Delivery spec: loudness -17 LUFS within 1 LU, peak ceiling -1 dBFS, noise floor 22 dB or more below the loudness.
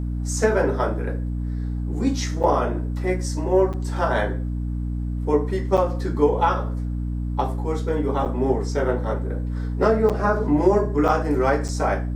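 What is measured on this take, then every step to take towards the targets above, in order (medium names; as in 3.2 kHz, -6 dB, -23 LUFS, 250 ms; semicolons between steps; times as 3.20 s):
dropouts 7; longest dropout 7.3 ms; hum 60 Hz; highest harmonic 300 Hz; hum level -23 dBFS; loudness -23.0 LUFS; peak level -6.0 dBFS; loudness target -17.0 LUFS
-> interpolate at 2.43/3.73/5.77/8.25/10.09/11.08/11.68 s, 7.3 ms; de-hum 60 Hz, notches 5; trim +6 dB; peak limiter -1 dBFS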